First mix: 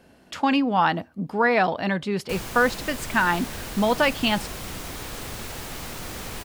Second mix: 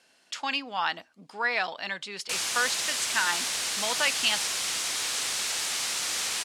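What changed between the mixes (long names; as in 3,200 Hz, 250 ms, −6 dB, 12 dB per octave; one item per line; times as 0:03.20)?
speech −8.5 dB
master: add meter weighting curve ITU-R 468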